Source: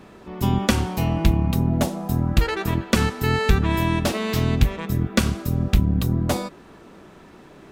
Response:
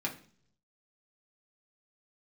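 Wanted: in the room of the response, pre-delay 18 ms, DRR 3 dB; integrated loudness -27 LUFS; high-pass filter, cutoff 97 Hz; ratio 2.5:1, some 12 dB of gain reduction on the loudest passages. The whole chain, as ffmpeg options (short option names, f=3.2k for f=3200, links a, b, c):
-filter_complex "[0:a]highpass=97,acompressor=threshold=-34dB:ratio=2.5,asplit=2[a][b];[1:a]atrim=start_sample=2205,adelay=18[c];[b][c]afir=irnorm=-1:irlink=0,volume=-7dB[d];[a][d]amix=inputs=2:normalize=0,volume=4.5dB"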